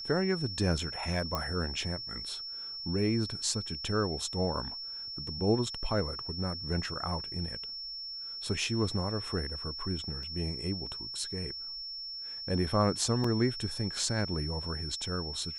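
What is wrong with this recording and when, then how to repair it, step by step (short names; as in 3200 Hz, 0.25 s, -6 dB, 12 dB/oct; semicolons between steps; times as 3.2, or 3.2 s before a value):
tone 5400 Hz -38 dBFS
1.35 pop -17 dBFS
10.23 gap 2.7 ms
13.24 gap 3.7 ms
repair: de-click; notch 5400 Hz, Q 30; interpolate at 10.23, 2.7 ms; interpolate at 13.24, 3.7 ms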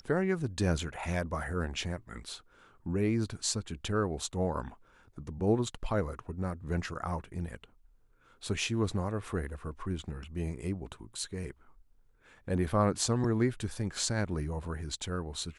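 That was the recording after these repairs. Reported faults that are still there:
none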